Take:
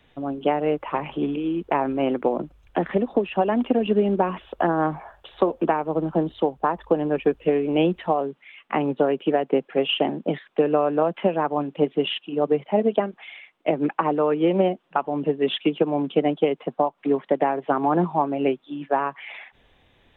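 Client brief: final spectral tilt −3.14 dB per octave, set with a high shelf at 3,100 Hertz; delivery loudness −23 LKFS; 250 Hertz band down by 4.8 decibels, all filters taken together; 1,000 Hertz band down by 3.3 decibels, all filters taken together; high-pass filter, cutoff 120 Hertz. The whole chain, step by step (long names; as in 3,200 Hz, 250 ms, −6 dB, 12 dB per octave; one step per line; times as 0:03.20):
high-pass filter 120 Hz
parametric band 250 Hz −6 dB
parametric band 1,000 Hz −5 dB
high-shelf EQ 3,100 Hz +9 dB
level +3 dB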